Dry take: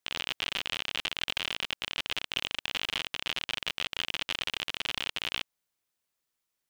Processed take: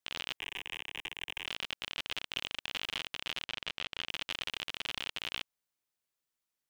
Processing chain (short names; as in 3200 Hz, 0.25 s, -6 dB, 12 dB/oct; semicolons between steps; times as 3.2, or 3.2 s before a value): 0.37–1.46 fixed phaser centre 900 Hz, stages 8; 3.45–4.09 air absorption 56 m; gain -5 dB